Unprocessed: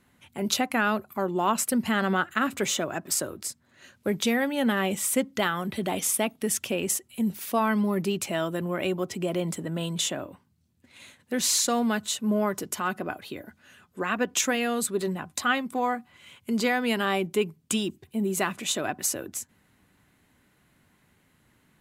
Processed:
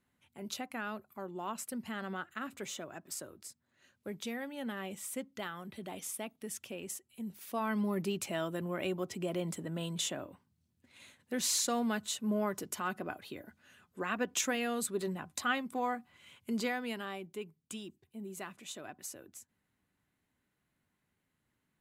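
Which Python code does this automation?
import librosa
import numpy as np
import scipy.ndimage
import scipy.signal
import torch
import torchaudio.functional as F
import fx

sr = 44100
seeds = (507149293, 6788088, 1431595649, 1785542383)

y = fx.gain(x, sr, db=fx.line((7.29, -15.0), (7.83, -7.5), (16.52, -7.5), (17.2, -17.0)))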